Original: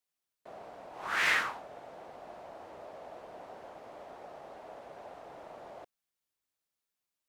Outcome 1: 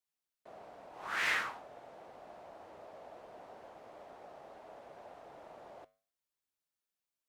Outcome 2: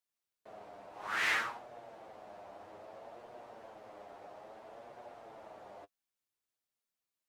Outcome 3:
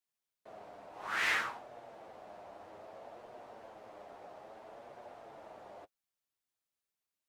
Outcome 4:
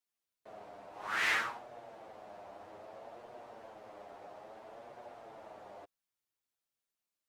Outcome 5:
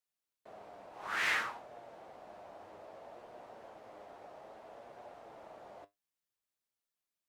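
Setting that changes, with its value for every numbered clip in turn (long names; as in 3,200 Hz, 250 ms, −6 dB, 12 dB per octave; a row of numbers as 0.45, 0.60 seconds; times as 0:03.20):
flanger, regen: −85, +26, −25, +4, +66%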